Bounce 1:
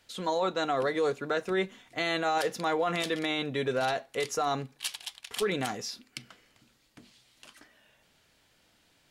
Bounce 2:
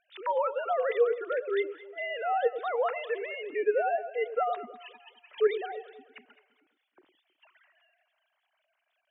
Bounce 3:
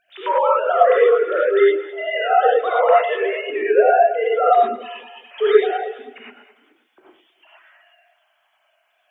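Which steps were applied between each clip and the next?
sine-wave speech; echo with dull and thin repeats by turns 0.105 s, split 920 Hz, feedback 59%, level -10.5 dB
non-linear reverb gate 0.13 s rising, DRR -5.5 dB; gain +6.5 dB

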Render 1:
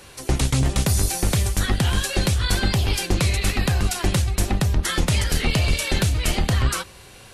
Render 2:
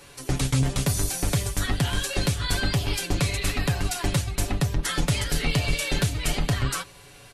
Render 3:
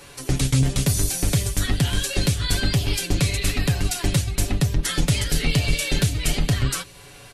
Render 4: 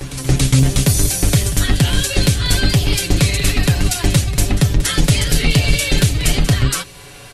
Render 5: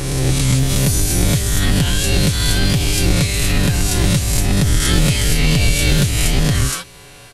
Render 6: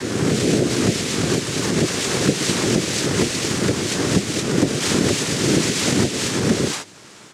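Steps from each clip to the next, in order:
comb 7 ms, depth 59%; gain -4.5 dB
dynamic EQ 990 Hz, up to -7 dB, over -45 dBFS, Q 0.8; gain +4 dB
reverse echo 0.281 s -13.5 dB; gain +6.5 dB
spectral swells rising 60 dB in 1.08 s; backwards sustainer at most 30 dB/s; gain -5 dB
noise vocoder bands 3; gain -2 dB

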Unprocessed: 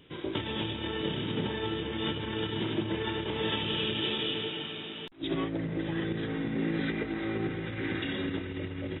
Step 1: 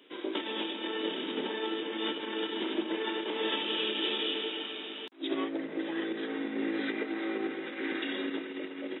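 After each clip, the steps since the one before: steep high-pass 250 Hz 36 dB/oct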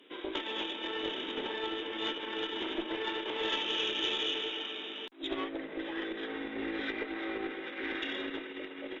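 added harmonics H 2 -16 dB, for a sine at -19 dBFS; dynamic EQ 210 Hz, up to -7 dB, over -48 dBFS, Q 0.77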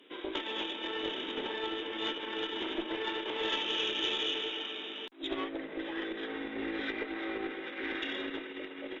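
nothing audible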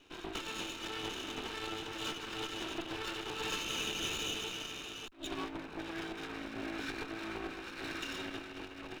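minimum comb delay 0.75 ms; gain -1.5 dB

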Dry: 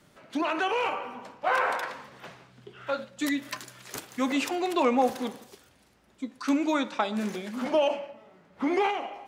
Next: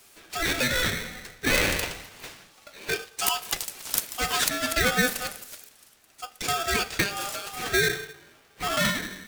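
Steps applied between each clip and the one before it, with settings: RIAA curve recording; polarity switched at an audio rate 1000 Hz; gain +2 dB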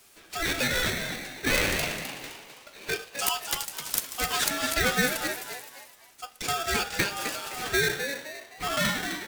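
frequency-shifting echo 0.258 s, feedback 36%, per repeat +120 Hz, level -8 dB; gain -2 dB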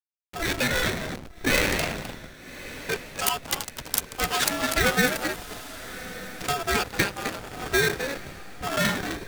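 backlash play -25 dBFS; diffused feedback echo 1.189 s, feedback 40%, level -14.5 dB; gain +4 dB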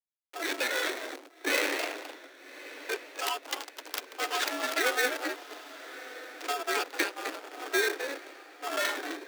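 median filter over 5 samples; steep high-pass 280 Hz 96 dB/oct; gain -4.5 dB

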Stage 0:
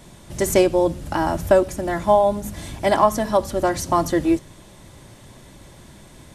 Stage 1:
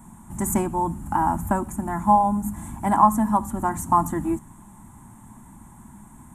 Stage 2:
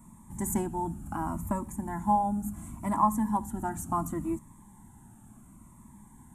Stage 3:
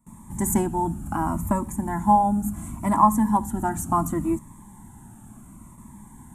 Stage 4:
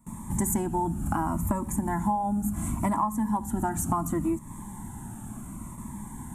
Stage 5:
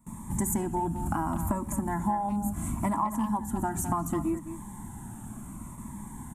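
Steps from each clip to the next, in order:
EQ curve 150 Hz 0 dB, 220 Hz +9 dB, 530 Hz -20 dB, 870 Hz +8 dB, 5000 Hz -26 dB, 7300 Hz +2 dB; gain -2.5 dB
cascading phaser falling 0.7 Hz; gain -6.5 dB
gate with hold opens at -45 dBFS; gain +7.5 dB
compressor 8:1, threshold -30 dBFS, peak gain reduction 18.5 dB; gain +6 dB
speakerphone echo 0.21 s, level -9 dB; gain -2 dB

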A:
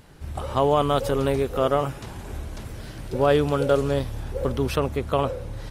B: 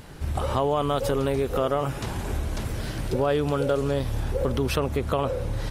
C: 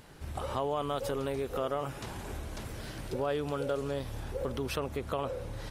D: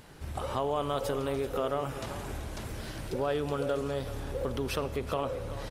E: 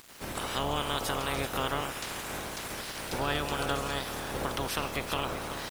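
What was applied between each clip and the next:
in parallel at +1 dB: limiter -20 dBFS, peak gain reduction 11.5 dB; on the sum: compressor 2.5:1, threshold -23 dBFS, peak gain reduction 8 dB
low shelf 210 Hz -5.5 dB; gain -7.5 dB
echo 0.383 s -13 dB; on a send at -15 dB: reverb RT60 1.4 s, pre-delay 15 ms; on the sum: gain +1.5 dB
spectral limiter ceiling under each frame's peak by 21 dB; bit-crush 8-bit

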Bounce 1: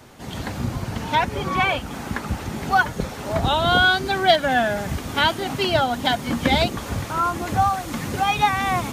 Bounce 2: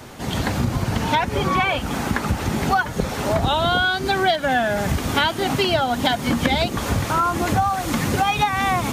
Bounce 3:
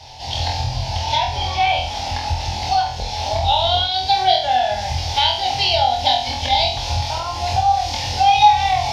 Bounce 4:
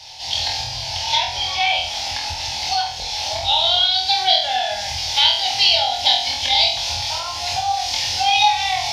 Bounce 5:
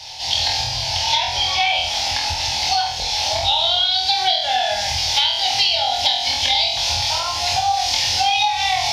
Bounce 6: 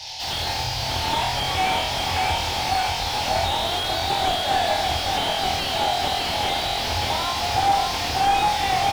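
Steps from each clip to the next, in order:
compressor 6:1, threshold -24 dBFS, peak gain reduction 13 dB; gain +7.5 dB
EQ curve 100 Hz 0 dB, 170 Hz -21 dB, 410 Hz -18 dB, 840 Hz +6 dB, 1200 Hz -21 dB, 2600 Hz 0 dB, 5200 Hz +9 dB, 7700 Hz -13 dB, 14000 Hz -20 dB; flutter echo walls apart 4.1 m, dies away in 0.5 s
tilt shelf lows -8.5 dB, about 1100 Hz; on a send at -11 dB: reverb RT60 0.90 s, pre-delay 3 ms; on the sum: gain -3 dB
compressor 10:1, threshold -18 dBFS, peak gain reduction 8.5 dB; gain +4 dB
feedback echo 0.586 s, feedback 54%, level -4 dB; slew limiter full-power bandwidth 170 Hz

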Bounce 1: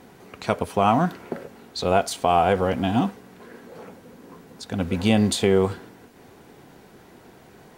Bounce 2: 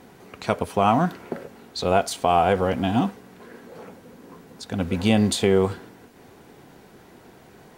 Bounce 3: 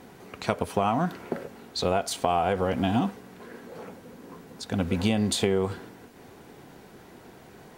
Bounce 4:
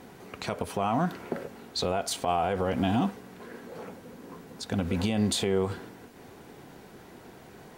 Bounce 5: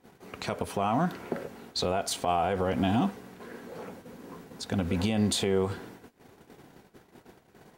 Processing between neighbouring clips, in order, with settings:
nothing audible
compressor, threshold -20 dBFS, peak gain reduction 7.5 dB
limiter -16 dBFS, peak gain reduction 9 dB
gate -47 dBFS, range -17 dB

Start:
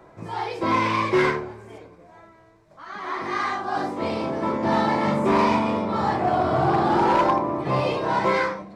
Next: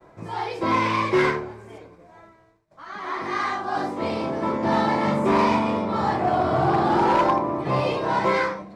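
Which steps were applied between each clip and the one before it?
expander -48 dBFS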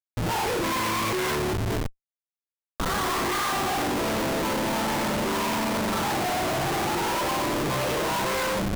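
Schmitt trigger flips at -38.5 dBFS; gain -2.5 dB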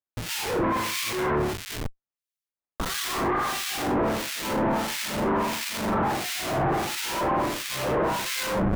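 harmonic tremolo 1.5 Hz, depth 100%, crossover 1800 Hz; gain +4 dB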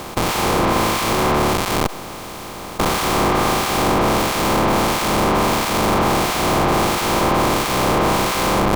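per-bin compression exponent 0.2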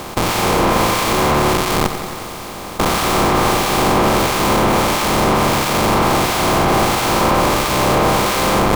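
lo-fi delay 90 ms, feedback 80%, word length 6-bit, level -11 dB; gain +2 dB

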